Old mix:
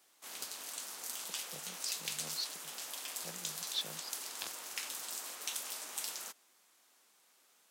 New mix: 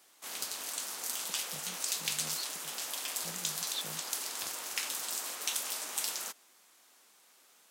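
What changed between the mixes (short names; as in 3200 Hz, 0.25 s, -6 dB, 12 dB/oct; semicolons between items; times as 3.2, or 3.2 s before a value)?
speech: add tone controls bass +6 dB, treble -5 dB; background +5.5 dB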